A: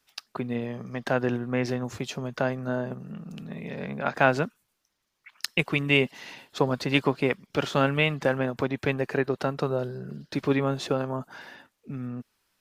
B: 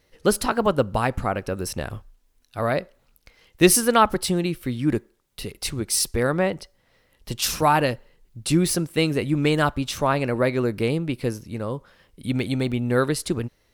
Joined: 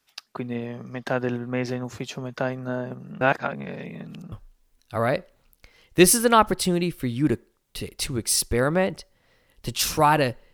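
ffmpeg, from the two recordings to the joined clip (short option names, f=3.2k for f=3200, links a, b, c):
-filter_complex "[0:a]apad=whole_dur=10.53,atrim=end=10.53,asplit=2[a][b];[a]atrim=end=3.212[c];[b]atrim=start=3.208:end=4.322,asetpts=PTS-STARTPTS,areverse[d];[1:a]atrim=start=1.948:end=8.16[e];[c][d]acrossfade=d=0.004:c1=hsin:c2=hsin[f];[f][e]acrossfade=d=0.004:c1=hsin:c2=hsin"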